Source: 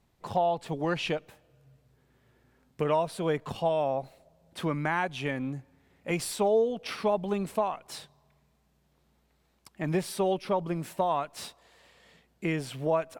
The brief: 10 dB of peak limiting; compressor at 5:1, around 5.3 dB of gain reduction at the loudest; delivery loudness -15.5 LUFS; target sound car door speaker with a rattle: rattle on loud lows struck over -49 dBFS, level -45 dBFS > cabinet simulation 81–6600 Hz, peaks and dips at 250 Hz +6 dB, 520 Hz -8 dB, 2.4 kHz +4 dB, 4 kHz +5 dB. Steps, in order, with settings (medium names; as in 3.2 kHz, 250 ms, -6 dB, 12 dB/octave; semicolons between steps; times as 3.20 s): compression 5:1, threshold -27 dBFS; peak limiter -27.5 dBFS; rattle on loud lows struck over -49 dBFS, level -45 dBFS; cabinet simulation 81–6600 Hz, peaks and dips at 250 Hz +6 dB, 520 Hz -8 dB, 2.4 kHz +4 dB, 4 kHz +5 dB; trim +22 dB